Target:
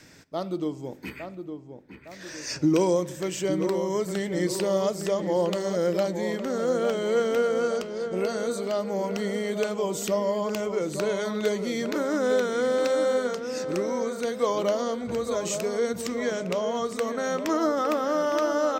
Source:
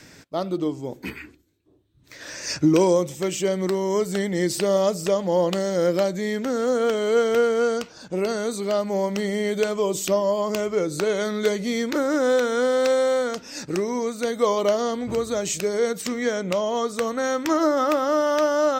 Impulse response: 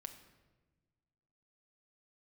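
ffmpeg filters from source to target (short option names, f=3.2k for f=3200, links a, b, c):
-filter_complex "[0:a]asplit=2[a][b];[b]adelay=860,lowpass=f=1.7k:p=1,volume=-7.5dB,asplit=2[c][d];[d]adelay=860,lowpass=f=1.7k:p=1,volume=0.5,asplit=2[e][f];[f]adelay=860,lowpass=f=1.7k:p=1,volume=0.5,asplit=2[g][h];[h]adelay=860,lowpass=f=1.7k:p=1,volume=0.5,asplit=2[i][j];[j]adelay=860,lowpass=f=1.7k:p=1,volume=0.5,asplit=2[k][l];[l]adelay=860,lowpass=f=1.7k:p=1,volume=0.5[m];[a][c][e][g][i][k][m]amix=inputs=7:normalize=0,asplit=2[n][o];[1:a]atrim=start_sample=2205[p];[o][p]afir=irnorm=-1:irlink=0,volume=-4dB[q];[n][q]amix=inputs=2:normalize=0,volume=-7dB"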